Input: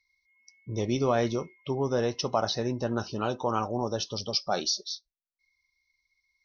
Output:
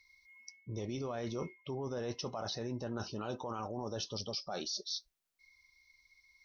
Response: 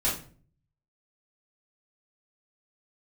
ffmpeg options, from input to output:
-af "alimiter=limit=-23.5dB:level=0:latency=1:release=20,areverse,acompressor=threshold=-48dB:ratio=4,areverse,volume=8.5dB"

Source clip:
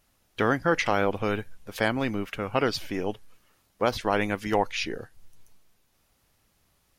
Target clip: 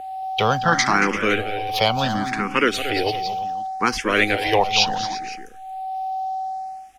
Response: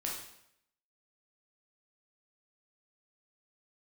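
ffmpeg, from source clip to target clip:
-filter_complex "[0:a]acrossover=split=210|680|5400[a][b][c][d];[c]crystalizer=i=6:c=0[e];[a][b][e][d]amix=inputs=4:normalize=0,acontrast=43,aeval=exprs='val(0)+0.0501*sin(2*PI*760*n/s)':c=same,aecho=1:1:230|343|509:0.282|0.188|0.158,asplit=2[f][g];[g]afreqshift=0.7[h];[f][h]amix=inputs=2:normalize=1,volume=1.5dB"

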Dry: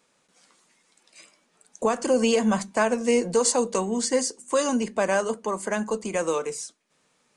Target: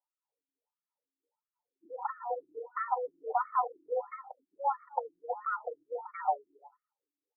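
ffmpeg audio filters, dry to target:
-filter_complex "[0:a]anlmdn=0.631,afreqshift=270,lowshelf=f=440:g=3.5,bandreject=f=60:t=h:w=6,bandreject=f=120:t=h:w=6,bandreject=f=180:t=h:w=6,aecho=1:1:2.2:0.75,asplit=2[a][b];[b]adelay=260,highpass=300,lowpass=3.4k,asoftclip=type=hard:threshold=-15.5dB,volume=-27dB[c];[a][c]amix=inputs=2:normalize=0,acrossover=split=210[d][e];[e]acompressor=threshold=-26dB:ratio=5[f];[d][f]amix=inputs=2:normalize=0,firequalizer=gain_entry='entry(460,0);entry(1000,14);entry(1500,0);entry(4100,-11)':delay=0.05:min_phase=1,acrossover=split=160|970|2800[g][h][i][j];[j]acompressor=threshold=-56dB:ratio=4[k];[g][h][i][k]amix=inputs=4:normalize=0,afftfilt=real='re*between(b*sr/1024,250*pow(1600/250,0.5+0.5*sin(2*PI*1.5*pts/sr))/1.41,250*pow(1600/250,0.5+0.5*sin(2*PI*1.5*pts/sr))*1.41)':imag='im*between(b*sr/1024,250*pow(1600/250,0.5+0.5*sin(2*PI*1.5*pts/sr))/1.41,250*pow(1600/250,0.5+0.5*sin(2*PI*1.5*pts/sr))*1.41)':win_size=1024:overlap=0.75,volume=-4dB"

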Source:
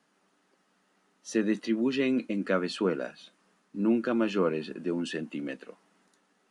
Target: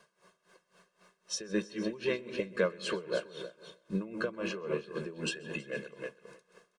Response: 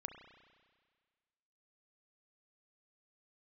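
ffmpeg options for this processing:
-filter_complex "[0:a]aecho=1:1:1.8:1,acompressor=threshold=-34dB:ratio=3,aecho=1:1:309|618|927:0.335|0.0603|0.0109,asplit=2[a][b];[1:a]atrim=start_sample=2205,adelay=124[c];[b][c]afir=irnorm=-1:irlink=0,volume=-7.5dB[d];[a][d]amix=inputs=2:normalize=0,asetrate=42336,aresample=44100,aeval=exprs='val(0)*pow(10,-18*(0.5-0.5*cos(2*PI*3.8*n/s))/20)':c=same,volume=6dB"

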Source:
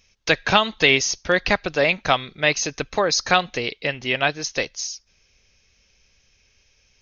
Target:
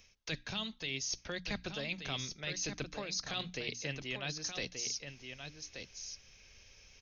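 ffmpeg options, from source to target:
-filter_complex "[0:a]acrossover=split=260|3000[a][b][c];[b]acompressor=threshold=-31dB:ratio=6[d];[a][d][c]amix=inputs=3:normalize=0,bandreject=f=60:t=h:w=6,bandreject=f=120:t=h:w=6,bandreject=f=180:t=h:w=6,bandreject=f=240:t=h:w=6,bandreject=f=300:t=h:w=6,areverse,acompressor=threshold=-38dB:ratio=6,areverse,aecho=1:1:1179:0.422,volume=1dB"

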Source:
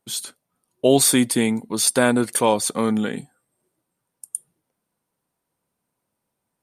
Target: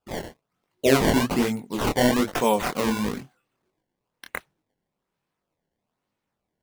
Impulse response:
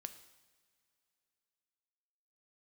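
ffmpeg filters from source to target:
-af "acrusher=samples=20:mix=1:aa=0.000001:lfo=1:lforange=32:lforate=1.1,flanger=delay=19.5:depth=6.9:speed=1.3"

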